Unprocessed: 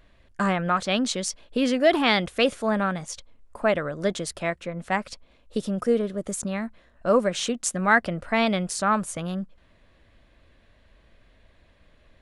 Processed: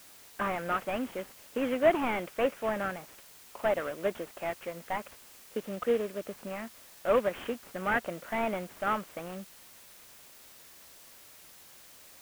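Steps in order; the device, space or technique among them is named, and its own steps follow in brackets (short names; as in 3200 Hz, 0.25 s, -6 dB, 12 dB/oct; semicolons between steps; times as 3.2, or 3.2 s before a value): army field radio (BPF 320–3400 Hz; CVSD 16 kbps; white noise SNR 20 dB); gain -3.5 dB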